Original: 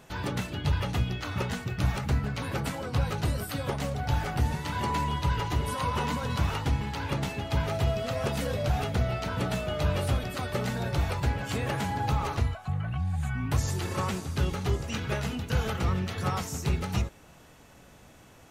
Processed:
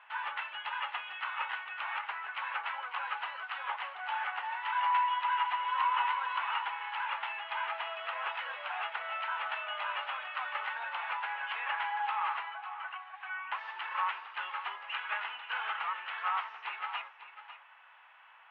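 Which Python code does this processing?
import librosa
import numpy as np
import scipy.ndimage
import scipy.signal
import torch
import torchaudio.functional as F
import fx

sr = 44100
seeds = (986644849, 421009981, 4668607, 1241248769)

p1 = scipy.signal.sosfilt(scipy.signal.ellip(3, 1.0, 70, [910.0, 3000.0], 'bandpass', fs=sr, output='sos'), x)
p2 = fx.air_absorb(p1, sr, metres=210.0)
p3 = p2 + fx.echo_single(p2, sr, ms=548, db=-12.5, dry=0)
y = p3 * librosa.db_to_amplitude(4.5)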